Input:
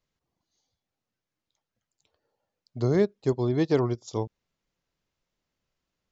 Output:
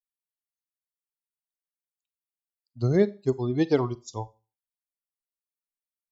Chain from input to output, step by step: per-bin expansion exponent 2; Schroeder reverb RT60 0.33 s, combs from 31 ms, DRR 17.5 dB; gain +3.5 dB

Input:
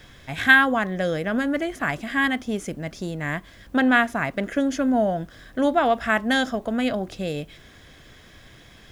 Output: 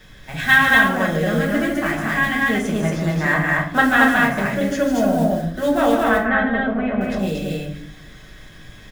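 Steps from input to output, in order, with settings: block floating point 5-bit; 2.49–3.81 bell 1100 Hz +11 dB 1.8 oct; 5.99–7.01 LPF 2200 Hz 24 dB/oct; loudspeakers at several distances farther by 51 m -7 dB, 79 m -1 dB; reverb RT60 0.55 s, pre-delay 5 ms, DRR -2 dB; gain -2.5 dB

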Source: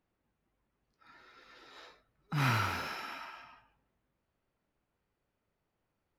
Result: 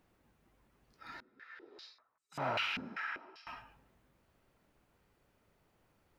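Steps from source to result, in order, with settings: 1.2–3.47 stepped band-pass 5.1 Hz 230–7700 Hz; gain +10 dB

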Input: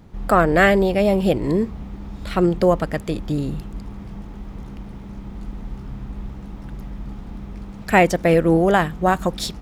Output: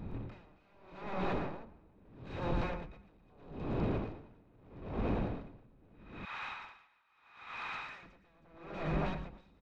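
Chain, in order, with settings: recorder AGC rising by 42 dB/s; 5.93–8.03 HPF 1200 Hz 24 dB/oct; compressor 3:1, threshold -25 dBFS, peak gain reduction 11.5 dB; wavefolder -28 dBFS; small resonant body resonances 2500/3800 Hz, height 16 dB, ringing for 35 ms; overloaded stage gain 33.5 dB; tape spacing loss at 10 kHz 38 dB; tapped delay 0.115/0.24/0.317 s -4.5/-9.5/-5 dB; dB-linear tremolo 0.78 Hz, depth 32 dB; gain +2.5 dB

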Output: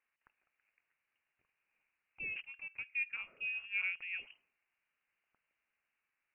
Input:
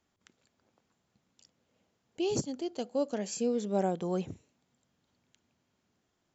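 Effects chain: three-band isolator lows -18 dB, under 490 Hz, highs -18 dB, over 2200 Hz; notch 1000 Hz, Q 29; inverted band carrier 3000 Hz; gain -2.5 dB

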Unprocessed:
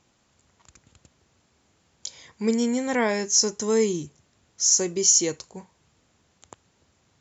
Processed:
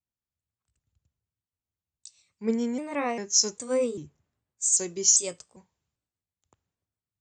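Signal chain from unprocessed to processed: trilling pitch shifter +2.5 st, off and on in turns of 0.397 s; three-band expander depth 70%; gain -7.5 dB

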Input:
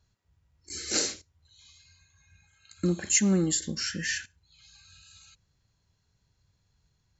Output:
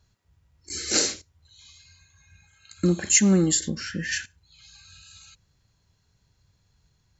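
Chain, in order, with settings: 3.68–4.11 LPF 2100 Hz -> 1300 Hz 6 dB/oct; gain +5 dB

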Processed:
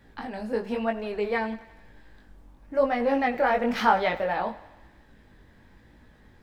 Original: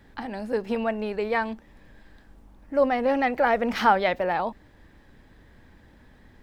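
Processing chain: chorus 1 Hz, delay 17 ms, depth 6.1 ms; on a send: thinning echo 88 ms, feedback 64%, high-pass 370 Hz, level -17 dB; on the sum: gain +1.5 dB

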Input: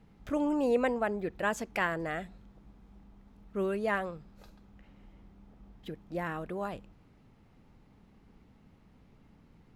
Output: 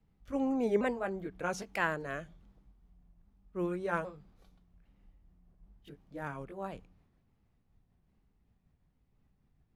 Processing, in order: repeated pitch sweeps -3 st, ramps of 0.809 s; de-hum 93.83 Hz, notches 2; three-band expander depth 40%; gain -3 dB

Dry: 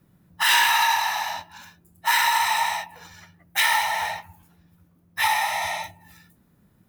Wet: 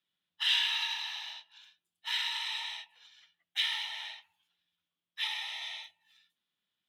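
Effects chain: band-pass 3300 Hz, Q 5.4

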